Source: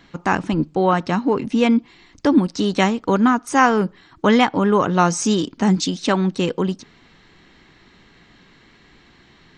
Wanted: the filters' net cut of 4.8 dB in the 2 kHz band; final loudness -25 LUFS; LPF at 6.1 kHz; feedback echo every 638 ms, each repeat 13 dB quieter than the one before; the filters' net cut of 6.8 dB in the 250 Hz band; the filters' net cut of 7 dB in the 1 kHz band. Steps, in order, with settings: low-pass 6.1 kHz; peaking EQ 250 Hz -8.5 dB; peaking EQ 1 kHz -8 dB; peaking EQ 2 kHz -3 dB; feedback delay 638 ms, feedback 22%, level -13 dB; trim -0.5 dB

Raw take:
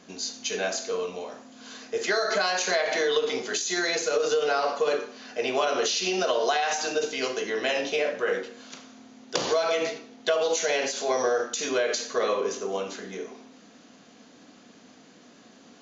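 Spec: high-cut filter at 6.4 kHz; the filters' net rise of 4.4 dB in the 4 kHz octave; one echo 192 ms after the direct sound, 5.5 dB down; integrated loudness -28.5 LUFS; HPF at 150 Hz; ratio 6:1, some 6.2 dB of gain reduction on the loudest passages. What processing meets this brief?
high-pass 150 Hz; low-pass 6.4 kHz; peaking EQ 4 kHz +6 dB; compression 6:1, threshold -26 dBFS; delay 192 ms -5.5 dB; trim +0.5 dB

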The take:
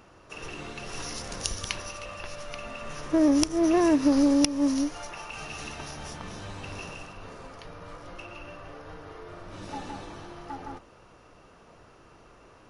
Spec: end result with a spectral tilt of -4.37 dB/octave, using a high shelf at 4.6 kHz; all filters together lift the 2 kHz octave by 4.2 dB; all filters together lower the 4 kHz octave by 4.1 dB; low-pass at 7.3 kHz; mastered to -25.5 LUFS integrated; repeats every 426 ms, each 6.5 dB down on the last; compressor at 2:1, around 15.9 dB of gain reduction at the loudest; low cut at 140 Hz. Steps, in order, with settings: high-pass 140 Hz; low-pass 7.3 kHz; peaking EQ 2 kHz +8.5 dB; peaking EQ 4 kHz -5.5 dB; treble shelf 4.6 kHz -5 dB; compression 2:1, threshold -48 dBFS; feedback delay 426 ms, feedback 47%, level -6.5 dB; trim +16.5 dB

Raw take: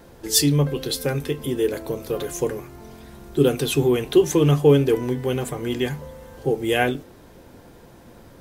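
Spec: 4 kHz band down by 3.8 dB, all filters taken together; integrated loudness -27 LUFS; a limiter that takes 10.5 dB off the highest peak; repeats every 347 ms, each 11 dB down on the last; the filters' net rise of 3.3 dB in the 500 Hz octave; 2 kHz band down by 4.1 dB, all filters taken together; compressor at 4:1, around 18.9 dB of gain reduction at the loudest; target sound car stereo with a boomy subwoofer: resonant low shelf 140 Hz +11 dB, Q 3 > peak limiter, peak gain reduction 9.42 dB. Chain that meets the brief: peaking EQ 500 Hz +6 dB; peaking EQ 2 kHz -5 dB; peaking EQ 4 kHz -3.5 dB; compression 4:1, threshold -30 dBFS; peak limiter -27 dBFS; resonant low shelf 140 Hz +11 dB, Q 3; feedback delay 347 ms, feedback 28%, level -11 dB; trim +12.5 dB; peak limiter -18.5 dBFS

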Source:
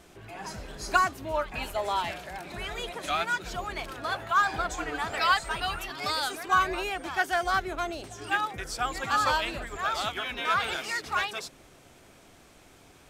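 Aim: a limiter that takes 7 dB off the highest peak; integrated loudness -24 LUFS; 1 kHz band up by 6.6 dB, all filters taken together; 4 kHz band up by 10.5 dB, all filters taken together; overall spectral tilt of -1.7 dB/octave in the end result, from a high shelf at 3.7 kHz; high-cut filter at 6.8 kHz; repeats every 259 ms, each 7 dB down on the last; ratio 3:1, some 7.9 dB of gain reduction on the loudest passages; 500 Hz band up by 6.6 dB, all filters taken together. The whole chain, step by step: low-pass 6.8 kHz; peaking EQ 500 Hz +6.5 dB; peaking EQ 1 kHz +5.5 dB; treble shelf 3.7 kHz +7.5 dB; peaking EQ 4 kHz +8.5 dB; compression 3:1, threshold -22 dBFS; peak limiter -16.5 dBFS; feedback delay 259 ms, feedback 45%, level -7 dB; trim +2.5 dB

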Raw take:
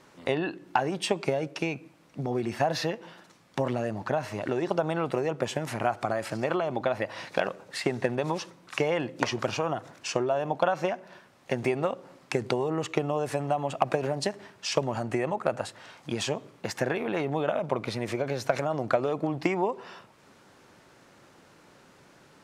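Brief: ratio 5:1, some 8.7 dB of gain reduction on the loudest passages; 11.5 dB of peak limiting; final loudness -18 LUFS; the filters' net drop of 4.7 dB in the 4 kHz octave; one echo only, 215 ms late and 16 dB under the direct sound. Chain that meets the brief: peaking EQ 4 kHz -6.5 dB; compression 5:1, threshold -31 dBFS; peak limiter -25.5 dBFS; delay 215 ms -16 dB; trim +20.5 dB

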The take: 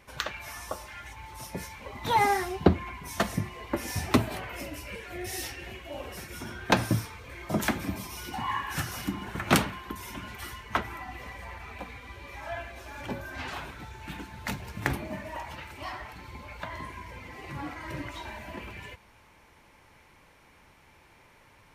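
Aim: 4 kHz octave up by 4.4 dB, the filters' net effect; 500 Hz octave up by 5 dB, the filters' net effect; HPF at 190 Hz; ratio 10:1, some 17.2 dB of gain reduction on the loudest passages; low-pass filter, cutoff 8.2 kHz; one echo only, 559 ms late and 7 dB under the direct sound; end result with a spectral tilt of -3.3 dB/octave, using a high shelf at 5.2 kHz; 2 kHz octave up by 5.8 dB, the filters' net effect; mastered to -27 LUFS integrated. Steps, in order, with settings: high-pass 190 Hz; low-pass 8.2 kHz; peaking EQ 500 Hz +6.5 dB; peaking EQ 2 kHz +6 dB; peaking EQ 4 kHz +5.5 dB; treble shelf 5.2 kHz -4.5 dB; compression 10:1, threshold -30 dBFS; delay 559 ms -7 dB; trim +8.5 dB

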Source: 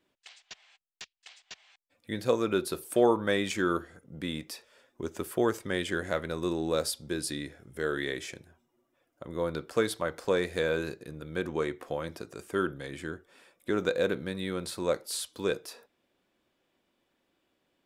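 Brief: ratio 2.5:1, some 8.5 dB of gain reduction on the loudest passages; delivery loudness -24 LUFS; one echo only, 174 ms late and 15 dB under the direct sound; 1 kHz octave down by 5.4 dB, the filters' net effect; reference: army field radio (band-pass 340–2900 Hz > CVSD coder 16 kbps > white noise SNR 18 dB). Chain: peaking EQ 1 kHz -7.5 dB; compression 2.5:1, threshold -33 dBFS; band-pass 340–2900 Hz; delay 174 ms -15 dB; CVSD coder 16 kbps; white noise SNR 18 dB; trim +17 dB

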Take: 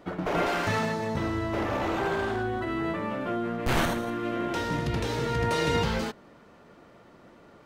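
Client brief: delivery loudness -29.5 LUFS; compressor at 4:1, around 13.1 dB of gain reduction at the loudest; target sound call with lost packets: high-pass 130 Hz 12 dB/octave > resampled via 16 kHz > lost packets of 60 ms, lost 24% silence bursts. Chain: compression 4:1, threshold -38 dBFS; high-pass 130 Hz 12 dB/octave; resampled via 16 kHz; lost packets of 60 ms, lost 24% silence bursts; trim +11.5 dB

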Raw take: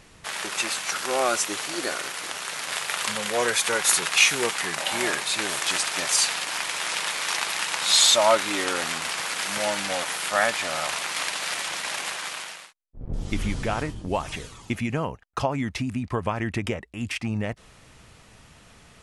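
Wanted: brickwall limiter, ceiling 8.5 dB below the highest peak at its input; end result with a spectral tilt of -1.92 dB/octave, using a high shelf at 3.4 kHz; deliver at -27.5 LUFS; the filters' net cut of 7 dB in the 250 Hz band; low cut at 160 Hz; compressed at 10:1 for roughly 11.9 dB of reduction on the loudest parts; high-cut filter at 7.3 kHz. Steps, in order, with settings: high-pass 160 Hz; low-pass 7.3 kHz; peaking EQ 250 Hz -8 dB; treble shelf 3.4 kHz -4 dB; compression 10:1, threshold -27 dBFS; trim +5 dB; peak limiter -15.5 dBFS

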